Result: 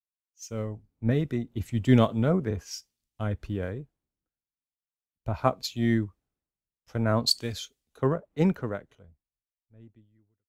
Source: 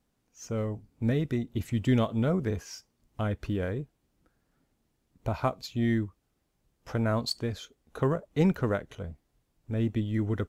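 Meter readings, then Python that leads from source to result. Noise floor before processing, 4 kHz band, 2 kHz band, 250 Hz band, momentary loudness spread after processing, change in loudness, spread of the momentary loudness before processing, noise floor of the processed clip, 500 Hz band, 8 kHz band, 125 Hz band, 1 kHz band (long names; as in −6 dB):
−76 dBFS, +7.0 dB, +0.5 dB, +1.0 dB, 16 LU, +2.0 dB, 16 LU, below −85 dBFS, +1.5 dB, +6.0 dB, +1.0 dB, +2.5 dB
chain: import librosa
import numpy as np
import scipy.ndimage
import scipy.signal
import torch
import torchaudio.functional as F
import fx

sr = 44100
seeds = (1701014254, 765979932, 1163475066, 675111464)

y = fx.fade_out_tail(x, sr, length_s=2.76)
y = fx.band_widen(y, sr, depth_pct=100)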